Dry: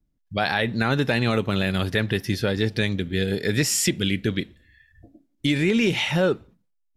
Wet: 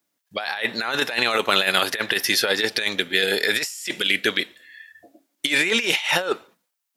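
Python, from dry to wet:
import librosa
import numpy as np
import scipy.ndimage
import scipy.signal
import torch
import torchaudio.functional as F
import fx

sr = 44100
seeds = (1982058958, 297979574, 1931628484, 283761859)

y = scipy.signal.sosfilt(scipy.signal.butter(2, 710.0, 'highpass', fs=sr, output='sos'), x)
y = fx.high_shelf(y, sr, hz=7800.0, db=5.0)
y = fx.over_compress(y, sr, threshold_db=-30.0, ratio=-0.5)
y = F.gain(torch.from_numpy(y), 9.0).numpy()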